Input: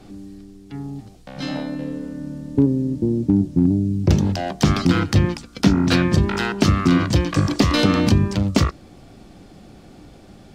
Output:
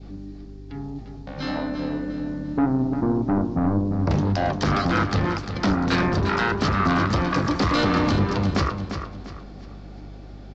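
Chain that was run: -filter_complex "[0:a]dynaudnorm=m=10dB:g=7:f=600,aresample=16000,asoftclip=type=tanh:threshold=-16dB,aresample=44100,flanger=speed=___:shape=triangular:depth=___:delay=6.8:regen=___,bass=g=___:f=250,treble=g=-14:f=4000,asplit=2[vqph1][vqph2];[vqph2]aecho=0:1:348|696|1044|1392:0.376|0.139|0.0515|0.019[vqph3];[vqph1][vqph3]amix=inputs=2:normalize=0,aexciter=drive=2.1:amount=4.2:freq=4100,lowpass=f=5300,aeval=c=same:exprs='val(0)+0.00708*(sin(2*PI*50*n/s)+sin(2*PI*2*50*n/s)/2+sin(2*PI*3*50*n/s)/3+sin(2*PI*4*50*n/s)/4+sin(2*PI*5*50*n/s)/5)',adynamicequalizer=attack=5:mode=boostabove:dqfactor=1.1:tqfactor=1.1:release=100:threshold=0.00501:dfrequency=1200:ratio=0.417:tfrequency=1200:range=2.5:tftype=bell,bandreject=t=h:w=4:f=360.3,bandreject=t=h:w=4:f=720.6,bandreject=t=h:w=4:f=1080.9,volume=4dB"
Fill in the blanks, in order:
1.8, 7, 69, -3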